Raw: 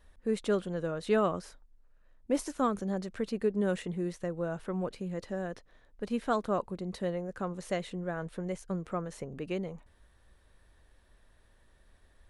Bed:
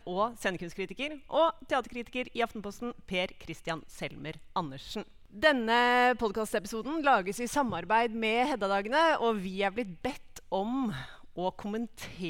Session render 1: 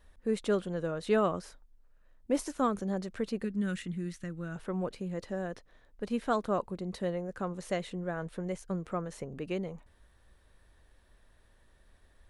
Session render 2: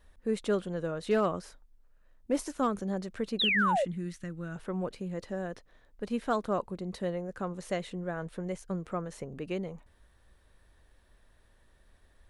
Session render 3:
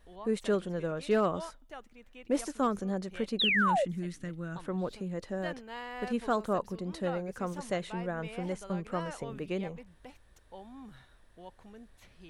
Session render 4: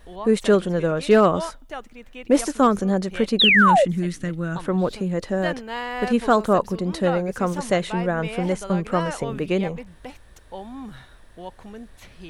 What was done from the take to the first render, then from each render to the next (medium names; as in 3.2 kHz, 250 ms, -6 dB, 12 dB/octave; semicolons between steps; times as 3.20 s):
3.44–4.56 s: high-order bell 630 Hz -13.5 dB
3.39–3.85 s: painted sound fall 500–4100 Hz -27 dBFS; hard clipper -19 dBFS, distortion -31 dB
add bed -17 dB
trim +12 dB